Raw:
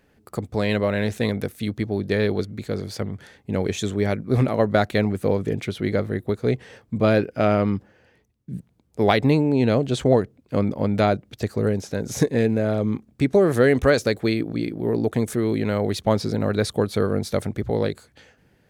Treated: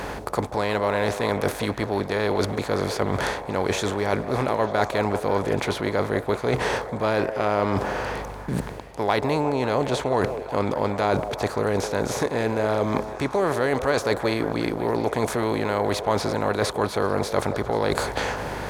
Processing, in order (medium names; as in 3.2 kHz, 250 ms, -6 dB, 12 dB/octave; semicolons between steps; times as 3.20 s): spectral levelling over time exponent 0.6; peaking EQ 150 Hz -5.5 dB 2.7 oct; hum 50 Hz, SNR 26 dB; reverse; compression 6:1, threshold -31 dBFS, peak gain reduction 18.5 dB; reverse; peaking EQ 960 Hz +10.5 dB 0.63 oct; on a send: repeats whose band climbs or falls 180 ms, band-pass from 530 Hz, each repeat 0.7 oct, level -7 dB; on the sum: trim +8.5 dB